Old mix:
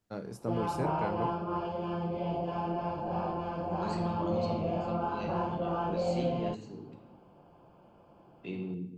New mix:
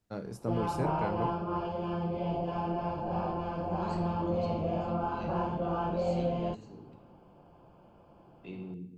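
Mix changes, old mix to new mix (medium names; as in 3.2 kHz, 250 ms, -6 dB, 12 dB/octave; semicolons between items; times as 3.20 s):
second voice -5.5 dB; master: add bass shelf 76 Hz +8 dB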